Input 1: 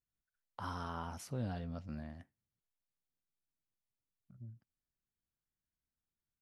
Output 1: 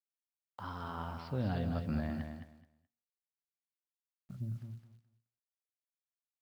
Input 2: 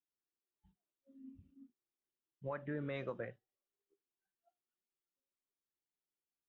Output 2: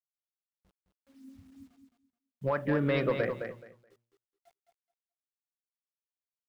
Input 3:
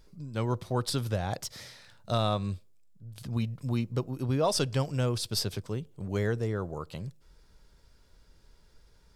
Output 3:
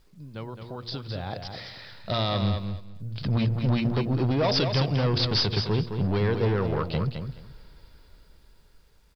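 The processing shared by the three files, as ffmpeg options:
-filter_complex "[0:a]bandreject=frequency=117.8:width_type=h:width=4,bandreject=frequency=235.6:width_type=h:width=4,bandreject=frequency=353.4:width_type=h:width=4,bandreject=frequency=471.2:width_type=h:width=4,bandreject=frequency=589:width_type=h:width=4,bandreject=frequency=706.8:width_type=h:width=4,acrossover=split=3600[link_01][link_02];[link_01]alimiter=level_in=1.5dB:limit=-24dB:level=0:latency=1:release=179,volume=-1.5dB[link_03];[link_03][link_02]amix=inputs=2:normalize=0,dynaudnorm=framelen=420:gausssize=9:maxgain=16dB,aresample=11025,asoftclip=type=hard:threshold=-18dB,aresample=44100,acrusher=bits=10:mix=0:aa=0.000001,aecho=1:1:213|426|639:0.447|0.0849|0.0161,volume=-2.5dB"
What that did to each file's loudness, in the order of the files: +5.0, +12.5, +5.0 LU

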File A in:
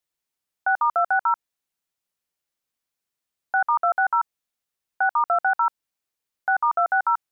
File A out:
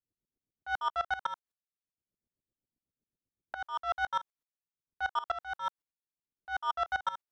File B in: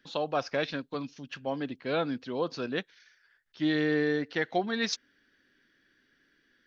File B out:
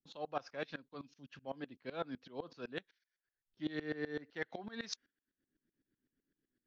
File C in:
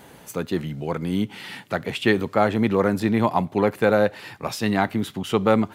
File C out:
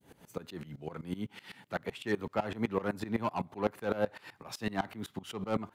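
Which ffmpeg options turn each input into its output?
-filter_complex "[0:a]adynamicequalizer=threshold=0.0251:dfrequency=1100:dqfactor=0.92:tfrequency=1100:tqfactor=0.92:attack=5:release=100:ratio=0.375:range=3:mode=boostabove:tftype=bell,acrossover=split=410|5200[link_01][link_02][link_03];[link_01]acompressor=mode=upward:threshold=-40dB:ratio=2.5[link_04];[link_02]asoftclip=type=tanh:threshold=-15.5dB[link_05];[link_04][link_05][link_03]amix=inputs=3:normalize=0,agate=range=-15dB:threshold=-50dB:ratio=16:detection=peak,aeval=exprs='val(0)*pow(10,-21*if(lt(mod(-7.9*n/s,1),2*abs(-7.9)/1000),1-mod(-7.9*n/s,1)/(2*abs(-7.9)/1000),(mod(-7.9*n/s,1)-2*abs(-7.9)/1000)/(1-2*abs(-7.9)/1000))/20)':channel_layout=same,volume=-7dB"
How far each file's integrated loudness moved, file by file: −12.5, −13.0, −13.5 LU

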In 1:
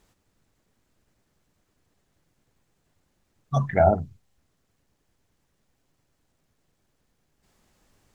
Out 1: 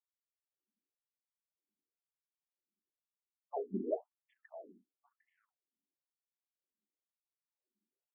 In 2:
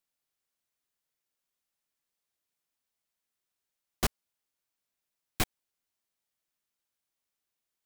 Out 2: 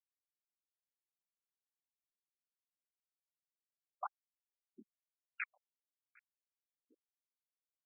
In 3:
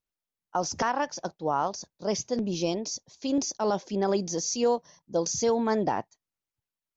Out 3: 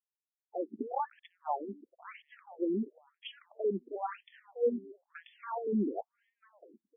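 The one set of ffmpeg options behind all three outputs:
-filter_complex "[0:a]aemphasis=mode=reproduction:type=50fm,anlmdn=0.00631,bass=frequency=250:gain=7,treble=frequency=4000:gain=-9,acrossover=split=3000[link_01][link_02];[link_02]dynaudnorm=framelen=110:gausssize=11:maxgain=10dB[link_03];[link_01][link_03]amix=inputs=2:normalize=0,asoftclip=type=tanh:threshold=-20dB,asplit=2[link_04][link_05];[link_05]adelay=754,lowpass=frequency=1300:poles=1,volume=-21dB,asplit=2[link_06][link_07];[link_07]adelay=754,lowpass=frequency=1300:poles=1,volume=0.28[link_08];[link_06][link_08]amix=inputs=2:normalize=0[link_09];[link_04][link_09]amix=inputs=2:normalize=0,afftfilt=real='re*between(b*sr/1024,280*pow(2500/280,0.5+0.5*sin(2*PI*0.99*pts/sr))/1.41,280*pow(2500/280,0.5+0.5*sin(2*PI*0.99*pts/sr))*1.41)':imag='im*between(b*sr/1024,280*pow(2500/280,0.5+0.5*sin(2*PI*0.99*pts/sr))/1.41,280*pow(2500/280,0.5+0.5*sin(2*PI*0.99*pts/sr))*1.41)':win_size=1024:overlap=0.75"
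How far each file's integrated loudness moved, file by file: −17.0, −12.5, −7.5 LU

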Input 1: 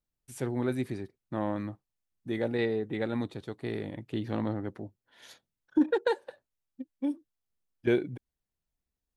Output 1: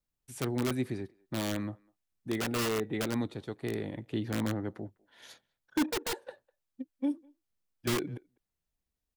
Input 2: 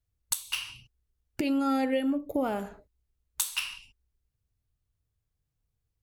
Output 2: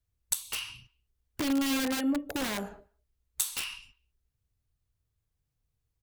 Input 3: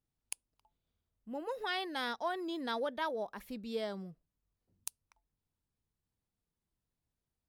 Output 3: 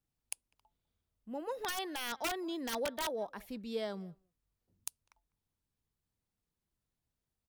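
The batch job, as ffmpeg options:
-filter_complex "[0:a]asplit=2[link_01][link_02];[link_02]adelay=200,highpass=300,lowpass=3400,asoftclip=type=hard:threshold=-21dB,volume=-27dB[link_03];[link_01][link_03]amix=inputs=2:normalize=0,acrossover=split=330|4200[link_04][link_05][link_06];[link_05]aeval=exprs='(mod(26.6*val(0)+1,2)-1)/26.6':channel_layout=same[link_07];[link_04][link_07][link_06]amix=inputs=3:normalize=0"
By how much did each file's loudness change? −1.5, −1.0, −0.5 LU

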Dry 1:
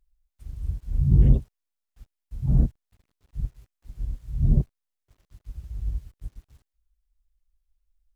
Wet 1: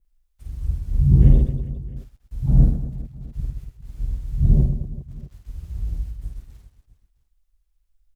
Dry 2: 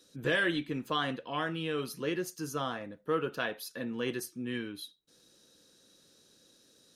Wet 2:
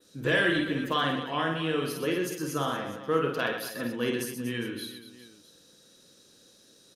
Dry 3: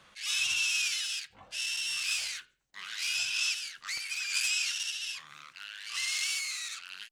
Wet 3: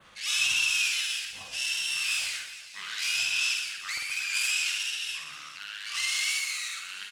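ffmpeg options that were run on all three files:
-af "aecho=1:1:50|125|237.5|406.2|659.4:0.631|0.398|0.251|0.158|0.1,adynamicequalizer=threshold=0.00501:dfrequency=5600:dqfactor=1.2:tfrequency=5600:tqfactor=1.2:attack=5:release=100:ratio=0.375:range=3:mode=cutabove:tftype=bell,volume=3dB"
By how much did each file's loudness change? +4.0, +5.0, +3.0 LU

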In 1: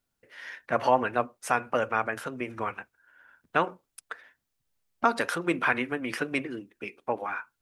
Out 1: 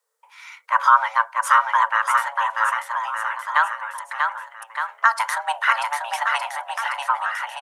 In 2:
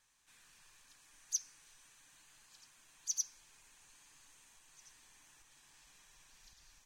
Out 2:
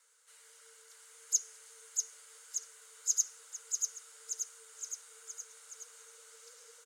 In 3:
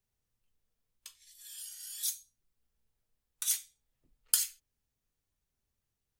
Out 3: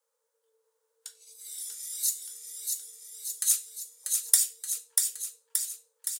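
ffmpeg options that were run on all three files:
-af "equalizer=frequency=250:width_type=o:width=1:gain=-10,equalizer=frequency=500:width_type=o:width=1:gain=8,equalizer=frequency=1000:width_type=o:width=1:gain=6,equalizer=frequency=2000:width_type=o:width=1:gain=-5,equalizer=frequency=8000:width_type=o:width=1:gain=7,afreqshift=440,aecho=1:1:640|1216|1734|2201|2621:0.631|0.398|0.251|0.158|0.1,volume=2dB"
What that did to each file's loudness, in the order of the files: +8.0, +2.5, +5.0 LU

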